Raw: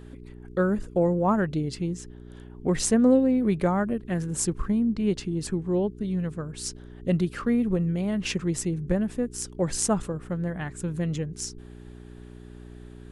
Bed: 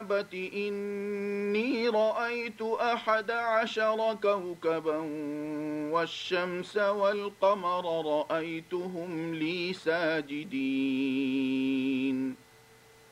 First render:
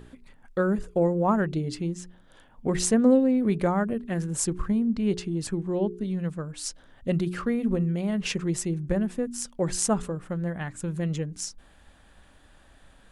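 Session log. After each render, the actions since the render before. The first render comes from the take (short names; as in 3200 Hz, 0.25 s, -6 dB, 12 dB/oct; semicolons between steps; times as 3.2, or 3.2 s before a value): de-hum 60 Hz, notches 7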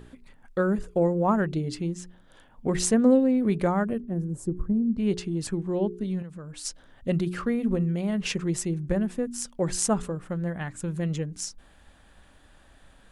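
4–4.98 EQ curve 350 Hz 0 dB, 2500 Hz -24 dB, 4700 Hz -22 dB, 11000 Hz -14 dB; 6.22–6.65 compressor, threshold -36 dBFS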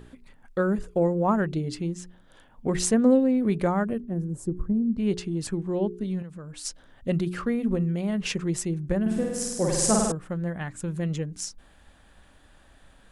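9.01–10.12 flutter echo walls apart 8.6 m, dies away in 1.4 s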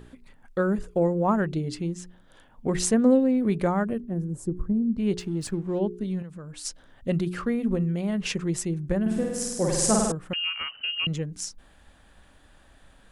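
5.19–5.79 backlash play -47.5 dBFS; 10.33–11.07 inverted band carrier 3000 Hz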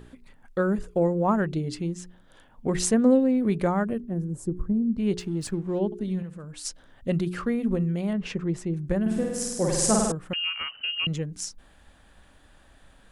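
5.85–6.45 flutter echo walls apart 11.9 m, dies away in 0.32 s; 8.13–8.74 LPF 1600 Hz 6 dB/oct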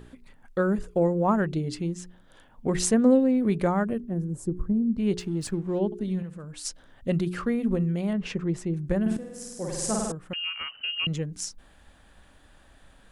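9.17–11.24 fade in, from -13 dB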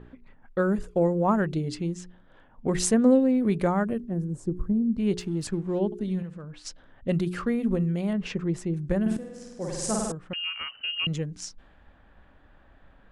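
low-pass opened by the level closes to 1800 Hz, open at -24.5 dBFS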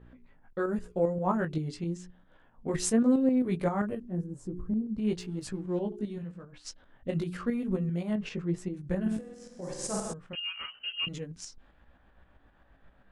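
chorus 0.91 Hz, delay 15.5 ms, depth 3.6 ms; tremolo saw up 7.6 Hz, depth 50%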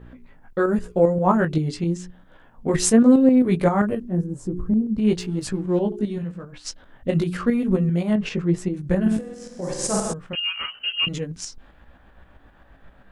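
gain +10 dB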